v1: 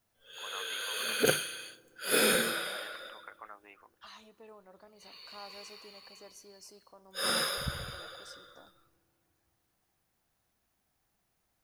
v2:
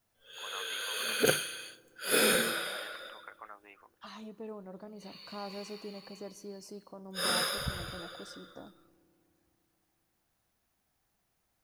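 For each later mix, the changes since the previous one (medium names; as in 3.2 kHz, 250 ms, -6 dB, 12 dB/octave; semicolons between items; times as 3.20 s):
second voice: remove high-pass 1.3 kHz 6 dB/octave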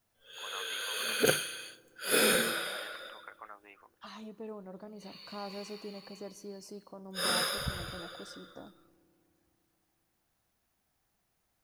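no change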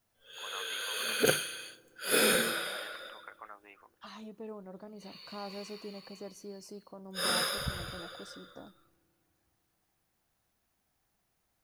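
second voice: send -8.0 dB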